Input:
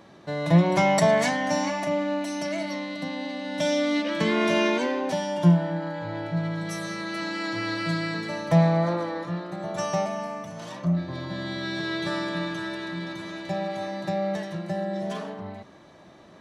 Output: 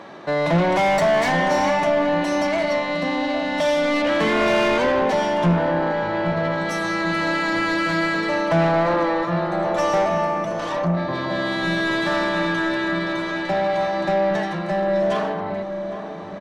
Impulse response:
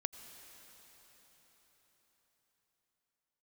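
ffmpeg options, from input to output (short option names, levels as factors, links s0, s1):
-filter_complex "[0:a]asplit=2[s0][s1];[s1]highpass=f=720:p=1,volume=20,asoftclip=type=tanh:threshold=0.447[s2];[s0][s2]amix=inputs=2:normalize=0,lowpass=f=1500:p=1,volume=0.501,asplit=2[s3][s4];[s4]adelay=807,lowpass=f=880:p=1,volume=0.422,asplit=2[s5][s6];[s6]adelay=807,lowpass=f=880:p=1,volume=0.55,asplit=2[s7][s8];[s8]adelay=807,lowpass=f=880:p=1,volume=0.55,asplit=2[s9][s10];[s10]adelay=807,lowpass=f=880:p=1,volume=0.55,asplit=2[s11][s12];[s12]adelay=807,lowpass=f=880:p=1,volume=0.55,asplit=2[s13][s14];[s14]adelay=807,lowpass=f=880:p=1,volume=0.55,asplit=2[s15][s16];[s16]adelay=807,lowpass=f=880:p=1,volume=0.55[s17];[s3][s5][s7][s9][s11][s13][s15][s17]amix=inputs=8:normalize=0,volume=0.708"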